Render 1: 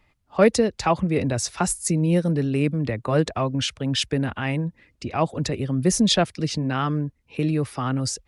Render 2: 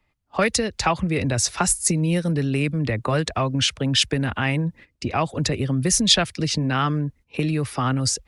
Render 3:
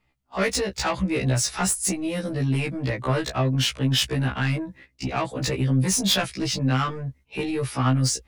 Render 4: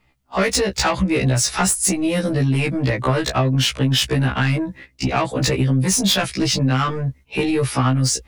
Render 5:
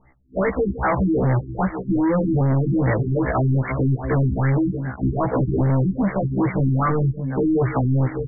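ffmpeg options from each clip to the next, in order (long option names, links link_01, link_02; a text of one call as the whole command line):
ffmpeg -i in.wav -filter_complex "[0:a]agate=range=-12dB:threshold=-46dB:ratio=16:detection=peak,acrossover=split=110|1300[link_01][link_02][link_03];[link_02]acompressor=threshold=-27dB:ratio=6[link_04];[link_01][link_04][link_03]amix=inputs=3:normalize=0,volume=5.5dB" out.wav
ffmpeg -i in.wav -af "asoftclip=type=tanh:threshold=-17dB,afftfilt=real='re*1.73*eq(mod(b,3),0)':imag='im*1.73*eq(mod(b,3),0)':win_size=2048:overlap=0.75,volume=2.5dB" out.wav
ffmpeg -i in.wav -af "acompressor=threshold=-23dB:ratio=6,volume=8.5dB" out.wav
ffmpeg -i in.wav -af "aecho=1:1:162|620:0.1|0.168,volume=23.5dB,asoftclip=hard,volume=-23.5dB,afftfilt=real='re*lt(b*sr/1024,360*pow(2300/360,0.5+0.5*sin(2*PI*2.5*pts/sr)))':imag='im*lt(b*sr/1024,360*pow(2300/360,0.5+0.5*sin(2*PI*2.5*pts/sr)))':win_size=1024:overlap=0.75,volume=7dB" out.wav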